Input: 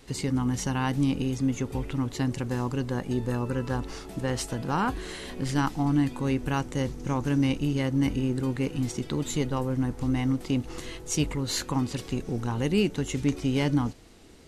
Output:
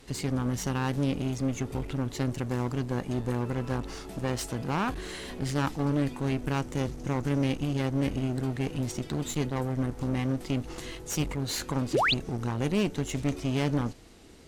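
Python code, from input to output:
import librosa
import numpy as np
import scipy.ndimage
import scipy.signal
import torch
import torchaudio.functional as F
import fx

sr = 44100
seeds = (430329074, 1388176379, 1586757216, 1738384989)

y = fx.clip_asym(x, sr, top_db=-35.5, bottom_db=-16.0)
y = fx.spec_paint(y, sr, seeds[0], shape='rise', start_s=11.93, length_s=0.21, low_hz=270.0, high_hz=4800.0, level_db=-24.0)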